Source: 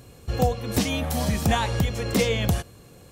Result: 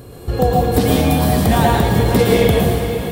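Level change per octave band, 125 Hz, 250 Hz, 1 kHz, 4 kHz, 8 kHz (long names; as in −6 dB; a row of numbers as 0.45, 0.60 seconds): +9.5, +10.5, +11.0, +5.5, +5.0 decibels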